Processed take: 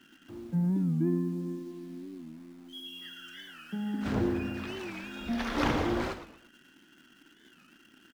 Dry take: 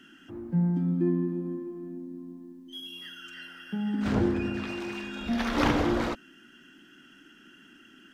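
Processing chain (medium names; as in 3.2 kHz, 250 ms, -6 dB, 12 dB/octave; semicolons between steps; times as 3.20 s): in parallel at -6 dB: word length cut 8-bit, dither none; on the sum: feedback delay 114 ms, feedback 32%, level -10.5 dB; warped record 45 rpm, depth 160 cents; trim -7 dB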